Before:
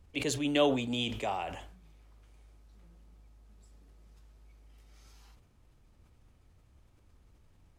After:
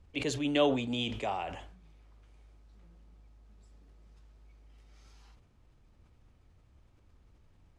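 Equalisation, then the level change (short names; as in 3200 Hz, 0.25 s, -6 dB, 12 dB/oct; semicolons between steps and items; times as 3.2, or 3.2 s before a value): air absorption 63 m; high shelf 11000 Hz +4 dB; 0.0 dB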